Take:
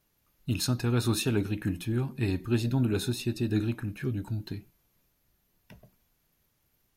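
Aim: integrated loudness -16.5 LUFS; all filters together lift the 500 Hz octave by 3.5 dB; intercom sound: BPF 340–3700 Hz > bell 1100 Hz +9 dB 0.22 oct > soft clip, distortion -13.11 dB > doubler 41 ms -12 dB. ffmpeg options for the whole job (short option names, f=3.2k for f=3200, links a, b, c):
-filter_complex "[0:a]highpass=340,lowpass=3.7k,equalizer=f=500:t=o:g=8,equalizer=f=1.1k:t=o:w=0.22:g=9,asoftclip=threshold=-25dB,asplit=2[a][b];[b]adelay=41,volume=-12dB[c];[a][c]amix=inputs=2:normalize=0,volume=18.5dB"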